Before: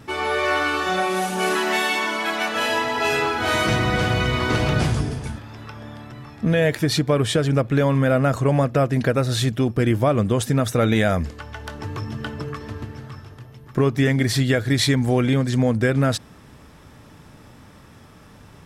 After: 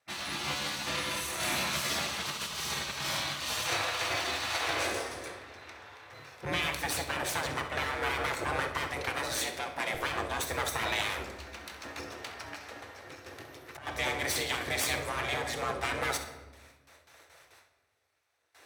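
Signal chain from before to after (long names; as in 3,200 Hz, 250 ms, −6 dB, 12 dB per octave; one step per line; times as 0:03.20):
lower of the sound and its delayed copy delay 0.49 ms
noise gate with hold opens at −36 dBFS
frequency shifter +65 Hz
0:09.32–0:09.95: linear-phase brick-wall high-pass 170 Hz
flutter between parallel walls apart 11.3 metres, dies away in 0.27 s
gate on every frequency bin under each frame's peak −15 dB weak
0:05.25–0:06.11: high-shelf EQ 8,700 Hz → 4,300 Hz −8.5 dB
rectangular room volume 670 cubic metres, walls mixed, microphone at 0.75 metres
0:13.26–0:13.87: compressor whose output falls as the input rises −37 dBFS, ratio −0.5
level −3 dB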